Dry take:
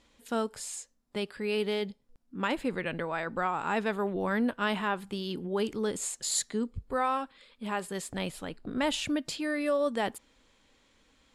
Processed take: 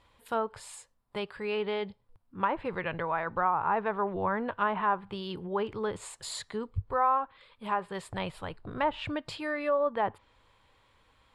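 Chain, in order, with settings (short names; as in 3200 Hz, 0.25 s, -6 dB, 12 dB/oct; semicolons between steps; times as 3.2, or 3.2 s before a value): fifteen-band EQ 100 Hz +11 dB, 250 Hz -10 dB, 1000 Hz +8 dB, 6300 Hz -12 dB; treble ducked by the level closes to 1500 Hz, closed at -24 dBFS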